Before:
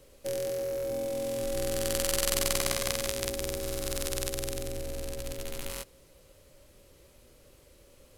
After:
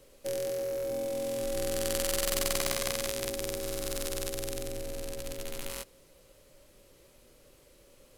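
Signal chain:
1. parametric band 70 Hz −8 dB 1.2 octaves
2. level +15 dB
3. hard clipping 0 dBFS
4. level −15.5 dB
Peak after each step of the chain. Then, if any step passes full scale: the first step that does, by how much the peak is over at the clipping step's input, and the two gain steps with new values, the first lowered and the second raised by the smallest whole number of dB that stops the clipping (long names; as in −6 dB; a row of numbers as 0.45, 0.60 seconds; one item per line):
−6.0, +9.0, 0.0, −15.5 dBFS
step 2, 9.0 dB
step 2 +6 dB, step 4 −6.5 dB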